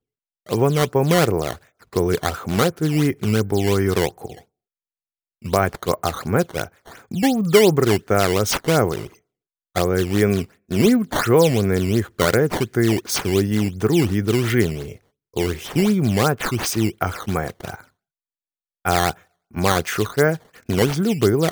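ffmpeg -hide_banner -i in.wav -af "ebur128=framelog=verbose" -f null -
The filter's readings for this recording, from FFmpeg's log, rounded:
Integrated loudness:
  I:         -19.9 LUFS
  Threshold: -30.5 LUFS
Loudness range:
  LRA:         5.0 LU
  Threshold: -40.8 LUFS
  LRA low:   -23.8 LUFS
  LRA high:  -18.9 LUFS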